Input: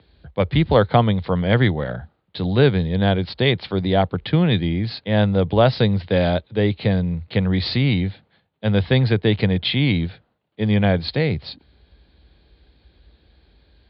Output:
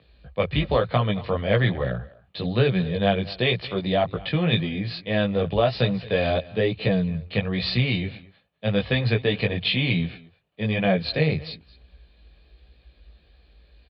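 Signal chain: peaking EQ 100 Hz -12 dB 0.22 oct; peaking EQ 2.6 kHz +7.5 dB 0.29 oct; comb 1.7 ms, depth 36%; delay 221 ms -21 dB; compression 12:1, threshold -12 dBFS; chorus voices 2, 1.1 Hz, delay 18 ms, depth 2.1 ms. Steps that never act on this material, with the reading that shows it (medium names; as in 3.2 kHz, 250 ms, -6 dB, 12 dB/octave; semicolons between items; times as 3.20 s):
none, every step acts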